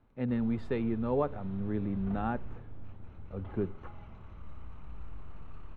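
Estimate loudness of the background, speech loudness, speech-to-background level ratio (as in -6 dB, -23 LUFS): -49.5 LUFS, -34.0 LUFS, 15.5 dB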